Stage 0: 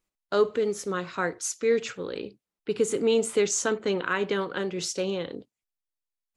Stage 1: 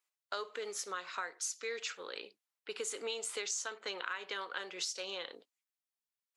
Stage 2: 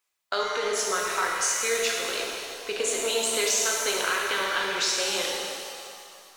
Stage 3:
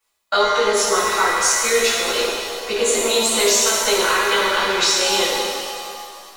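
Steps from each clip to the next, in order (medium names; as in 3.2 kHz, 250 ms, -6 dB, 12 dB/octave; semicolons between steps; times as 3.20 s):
high-pass 880 Hz 12 dB/octave; dynamic bell 4.6 kHz, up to +5 dB, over -46 dBFS, Q 1.5; compression 6:1, threshold -34 dBFS, peak gain reduction 11.5 dB; trim -1.5 dB
in parallel at -6 dB: hysteresis with a dead band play -40 dBFS; on the sum: pitch-shifted reverb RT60 2.3 s, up +7 st, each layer -8 dB, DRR -2.5 dB; trim +6.5 dB
reverberation RT60 0.20 s, pre-delay 3 ms, DRR -7 dB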